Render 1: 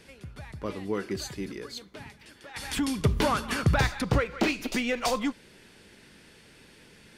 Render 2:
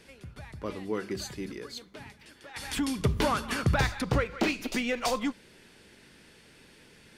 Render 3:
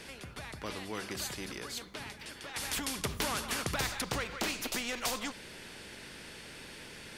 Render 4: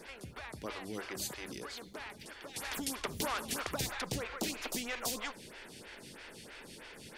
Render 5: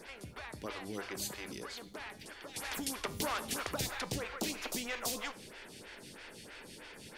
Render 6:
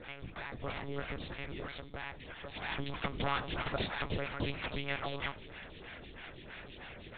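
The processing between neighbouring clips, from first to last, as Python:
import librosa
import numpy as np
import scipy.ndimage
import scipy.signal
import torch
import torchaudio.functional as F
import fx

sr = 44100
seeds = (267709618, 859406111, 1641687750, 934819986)

y1 = fx.hum_notches(x, sr, base_hz=50, count=4)
y1 = y1 * 10.0 ** (-1.5 / 20.0)
y2 = fx.spectral_comp(y1, sr, ratio=2.0)
y2 = y2 * 10.0 ** (-4.0 / 20.0)
y3 = fx.stagger_phaser(y2, sr, hz=3.1)
y3 = y3 * 10.0 ** (1.0 / 20.0)
y4 = fx.comb_fb(y3, sr, f0_hz=100.0, decay_s=0.44, harmonics='all', damping=0.0, mix_pct=50)
y4 = y4 * 10.0 ** (4.5 / 20.0)
y5 = fx.lpc_monotone(y4, sr, seeds[0], pitch_hz=140.0, order=10)
y5 = y5 * 10.0 ** (3.0 / 20.0)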